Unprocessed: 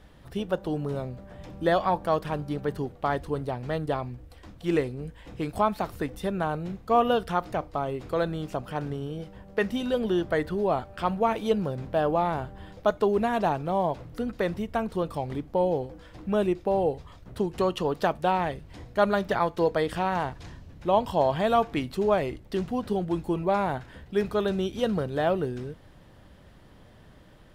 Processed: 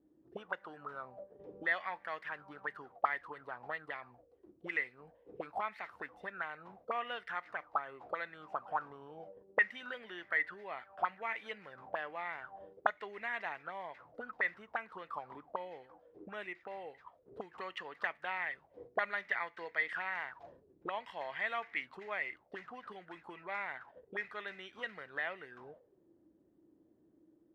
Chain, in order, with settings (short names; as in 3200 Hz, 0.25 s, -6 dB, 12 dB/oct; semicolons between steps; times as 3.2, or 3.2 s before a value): gate -43 dBFS, range -8 dB; auto-wah 310–2000 Hz, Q 9.1, up, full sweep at -24 dBFS; gain +8 dB